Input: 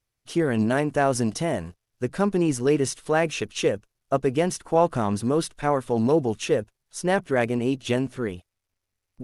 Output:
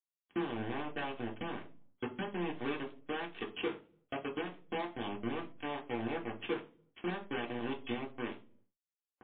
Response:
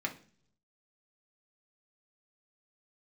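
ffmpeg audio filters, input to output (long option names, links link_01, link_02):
-filter_complex "[0:a]acompressor=threshold=-27dB:ratio=12,acrusher=bits=3:mix=0:aa=0.5,asoftclip=type=hard:threshold=-33dB[link_01];[1:a]atrim=start_sample=2205,asetrate=57330,aresample=44100[link_02];[link_01][link_02]afir=irnorm=-1:irlink=0,volume=5dB" -ar 8000 -c:a libmp3lame -b:a 24k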